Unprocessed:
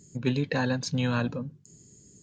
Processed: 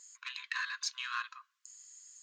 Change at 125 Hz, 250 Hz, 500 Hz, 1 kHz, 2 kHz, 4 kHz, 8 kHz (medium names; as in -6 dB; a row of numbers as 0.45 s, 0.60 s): under -40 dB, under -40 dB, under -40 dB, -6.0 dB, -2.5 dB, -2.0 dB, -1.0 dB